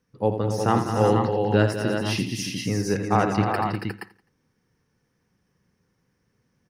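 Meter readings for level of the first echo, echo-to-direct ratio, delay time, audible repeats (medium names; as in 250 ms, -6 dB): -8.5 dB, 0.0 dB, 83 ms, 10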